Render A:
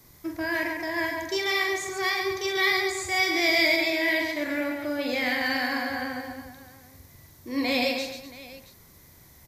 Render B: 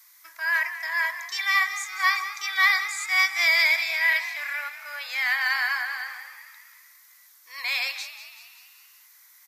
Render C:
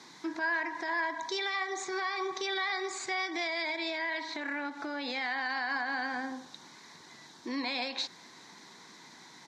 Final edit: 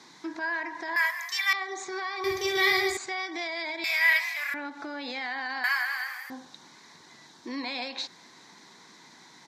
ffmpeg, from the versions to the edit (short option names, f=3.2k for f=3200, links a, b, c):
-filter_complex "[1:a]asplit=3[a][b][c];[2:a]asplit=5[d][e][f][g][h];[d]atrim=end=0.962[i];[a]atrim=start=0.958:end=1.532[j];[e]atrim=start=1.528:end=2.242[k];[0:a]atrim=start=2.238:end=2.972[l];[f]atrim=start=2.968:end=3.842[m];[b]atrim=start=3.838:end=4.542[n];[g]atrim=start=4.538:end=5.642[o];[c]atrim=start=5.638:end=6.302[p];[h]atrim=start=6.298[q];[i][j]acrossfade=d=0.004:c1=hsin:c2=hsin[r];[r][k]acrossfade=d=0.004:c1=hsin:c2=hsin[s];[s][l]acrossfade=d=0.004:c1=hsin:c2=hsin[t];[t][m]acrossfade=d=0.004:c1=hsin:c2=hsin[u];[u][n]acrossfade=d=0.004:c1=hsin:c2=hsin[v];[v][o]acrossfade=d=0.004:c1=hsin:c2=hsin[w];[w][p]acrossfade=d=0.004:c1=hsin:c2=hsin[x];[x][q]acrossfade=d=0.004:c1=hsin:c2=hsin"